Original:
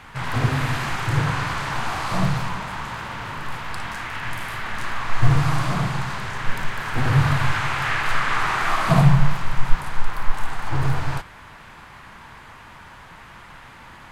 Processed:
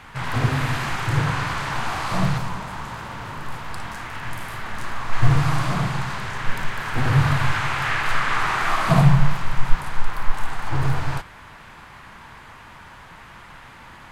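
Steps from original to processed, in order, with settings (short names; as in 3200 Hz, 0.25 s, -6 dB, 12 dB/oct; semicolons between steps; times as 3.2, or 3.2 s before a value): 2.38–5.13 bell 2400 Hz -4.5 dB 2.1 oct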